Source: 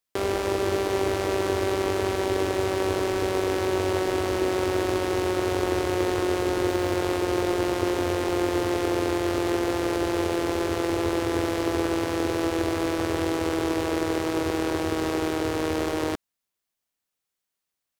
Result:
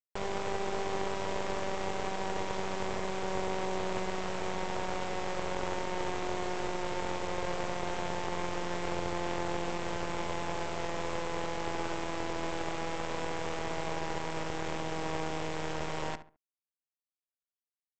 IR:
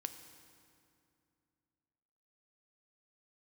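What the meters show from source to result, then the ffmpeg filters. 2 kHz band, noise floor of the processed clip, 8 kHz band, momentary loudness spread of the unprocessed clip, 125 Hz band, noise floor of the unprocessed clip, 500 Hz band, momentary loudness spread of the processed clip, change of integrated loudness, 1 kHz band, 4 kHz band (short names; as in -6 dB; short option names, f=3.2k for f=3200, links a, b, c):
-7.0 dB, under -85 dBFS, -8.5 dB, 2 LU, -9.5 dB, -84 dBFS, -11.5 dB, 2 LU, -10.0 dB, -5.0 dB, -7.5 dB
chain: -filter_complex "[0:a]acrossover=split=1900[a][b];[a]highpass=f=490:w=0.5412,highpass=f=490:w=1.3066[c];[b]alimiter=level_in=5dB:limit=-24dB:level=0:latency=1,volume=-5dB[d];[c][d]amix=inputs=2:normalize=0,adynamicsmooth=sensitivity=2:basefreq=2.1k,aresample=16000,acrusher=bits=4:dc=4:mix=0:aa=0.000001,aresample=44100,asplit=2[e][f];[f]adelay=69,lowpass=f=2.1k:p=1,volume=-11.5dB,asplit=2[g][h];[h]adelay=69,lowpass=f=2.1k:p=1,volume=0.3,asplit=2[i][j];[j]adelay=69,lowpass=f=2.1k:p=1,volume=0.3[k];[e][g][i][k]amix=inputs=4:normalize=0"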